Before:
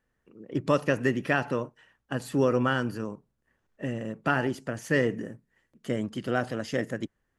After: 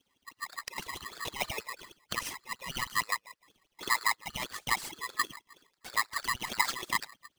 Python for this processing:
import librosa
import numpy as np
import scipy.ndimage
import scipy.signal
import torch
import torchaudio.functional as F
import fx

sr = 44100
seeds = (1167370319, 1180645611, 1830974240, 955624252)

p1 = fx.low_shelf(x, sr, hz=88.0, db=-9.5)
p2 = fx.over_compress(p1, sr, threshold_db=-32.0, ratio=-0.5)
p3 = p2 + fx.echo_wet_bandpass(p2, sr, ms=102, feedback_pct=30, hz=500.0, wet_db=-10.5, dry=0)
p4 = fx.env_flanger(p3, sr, rest_ms=6.4, full_db=-26.0)
p5 = fx.filter_lfo_highpass(p4, sr, shape='sine', hz=6.3, low_hz=340.0, high_hz=3600.0, q=4.6)
y = p5 * np.sign(np.sin(2.0 * np.pi * 1500.0 * np.arange(len(p5)) / sr))